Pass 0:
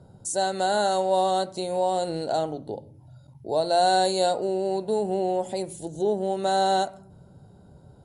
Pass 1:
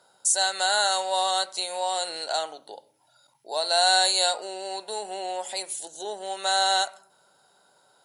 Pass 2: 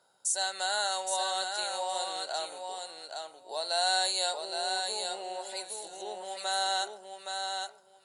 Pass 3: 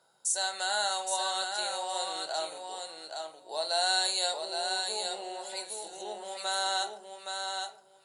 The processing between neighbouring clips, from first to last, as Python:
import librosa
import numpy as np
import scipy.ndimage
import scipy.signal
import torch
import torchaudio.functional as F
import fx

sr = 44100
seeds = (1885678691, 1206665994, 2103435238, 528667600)

y1 = scipy.signal.sosfilt(scipy.signal.butter(2, 1400.0, 'highpass', fs=sr, output='sos'), x)
y1 = F.gain(torch.from_numpy(y1), 9.0).numpy()
y2 = fx.echo_feedback(y1, sr, ms=818, feedback_pct=16, wet_db=-5.0)
y2 = F.gain(torch.from_numpy(y2), -7.5).numpy()
y3 = fx.room_shoebox(y2, sr, seeds[0], volume_m3=250.0, walls='furnished', distance_m=0.69)